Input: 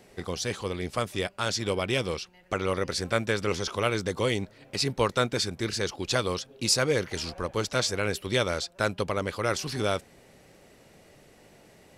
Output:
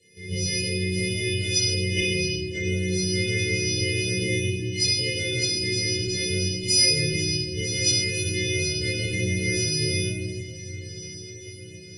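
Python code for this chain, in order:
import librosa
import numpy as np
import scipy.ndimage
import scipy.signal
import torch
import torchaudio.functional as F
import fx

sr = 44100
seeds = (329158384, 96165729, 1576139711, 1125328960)

p1 = fx.freq_snap(x, sr, grid_st=3)
p2 = scipy.signal.sosfilt(scipy.signal.cheby1(4, 1.0, [520.0, 2000.0], 'bandstop', fs=sr, output='sos'), p1)
p3 = fx.peak_eq(p2, sr, hz=100.0, db=11.0, octaves=0.83)
p4 = fx.resonator_bank(p3, sr, root=39, chord='minor', decay_s=0.72)
p5 = fx.rider(p4, sr, range_db=4, speed_s=2.0)
p6 = p4 + (p5 * librosa.db_to_amplitude(-2.0))
p7 = scipy.signal.sosfilt(scipy.signal.butter(2, 8300.0, 'lowpass', fs=sr, output='sos'), p6)
p8 = fx.notch_comb(p7, sr, f0_hz=790.0)
p9 = fx.level_steps(p8, sr, step_db=10)
p10 = p9 + fx.echo_diffused(p9, sr, ms=1384, feedback_pct=58, wet_db=-15, dry=0)
p11 = fx.room_shoebox(p10, sr, seeds[0], volume_m3=700.0, walls='mixed', distance_m=4.6)
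p12 = fx.end_taper(p11, sr, db_per_s=130.0)
y = p12 * librosa.db_to_amplitude(4.5)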